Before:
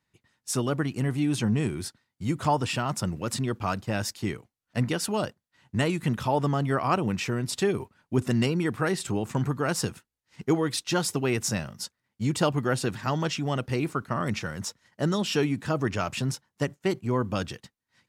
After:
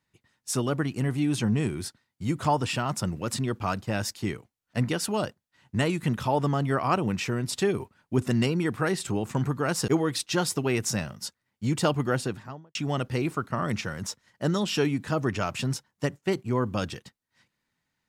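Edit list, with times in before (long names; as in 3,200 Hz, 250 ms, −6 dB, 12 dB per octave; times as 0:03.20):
0:09.88–0:10.46: remove
0:12.66–0:13.33: fade out and dull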